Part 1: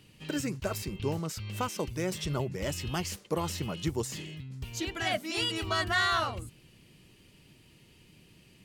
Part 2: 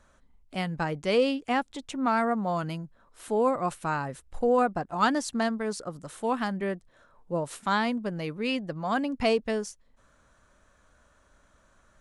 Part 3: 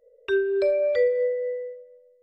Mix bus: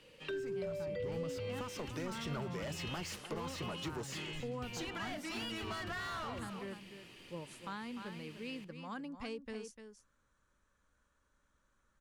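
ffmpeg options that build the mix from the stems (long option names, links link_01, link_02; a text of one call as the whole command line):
ffmpeg -i stem1.wav -i stem2.wav -i stem3.wav -filter_complex "[0:a]asplit=2[link_01][link_02];[link_02]highpass=frequency=720:poles=1,volume=24dB,asoftclip=type=tanh:threshold=-18.5dB[link_03];[link_01][link_03]amix=inputs=2:normalize=0,lowpass=frequency=2700:poles=1,volume=-6dB,volume=-9dB,afade=type=in:start_time=0.86:duration=0.25:silence=0.473151,asplit=2[link_04][link_05];[link_05]volume=-16dB[link_06];[1:a]equalizer=frequency=670:width=5.8:gain=-13,volume=-14dB,asplit=2[link_07][link_08];[link_08]volume=-10dB[link_09];[2:a]volume=-7dB[link_10];[link_06][link_09]amix=inputs=2:normalize=0,aecho=0:1:298:1[link_11];[link_04][link_07][link_10][link_11]amix=inputs=4:normalize=0,acrossover=split=210[link_12][link_13];[link_13]acompressor=threshold=-40dB:ratio=6[link_14];[link_12][link_14]amix=inputs=2:normalize=0" out.wav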